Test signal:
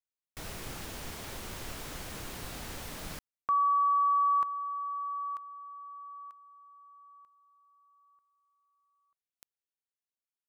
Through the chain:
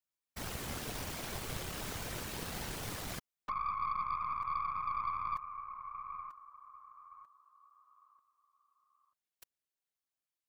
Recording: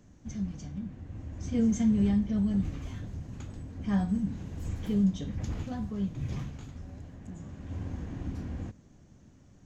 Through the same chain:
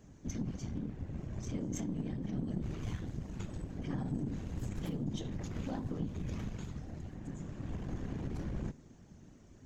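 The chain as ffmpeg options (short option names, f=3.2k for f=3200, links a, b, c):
-af "acompressor=threshold=-35dB:ratio=20:attack=1.8:release=25:knee=1:detection=rms,afftfilt=real='hypot(re,im)*cos(2*PI*random(0))':imag='hypot(re,im)*sin(2*PI*random(1))':win_size=512:overlap=0.75,aeval=exprs='0.0237*(cos(1*acos(clip(val(0)/0.0237,-1,1)))-cos(1*PI/2))+0.000944*(cos(3*acos(clip(val(0)/0.0237,-1,1)))-cos(3*PI/2))+0.00188*(cos(4*acos(clip(val(0)/0.0237,-1,1)))-cos(4*PI/2))':c=same,volume=7.5dB"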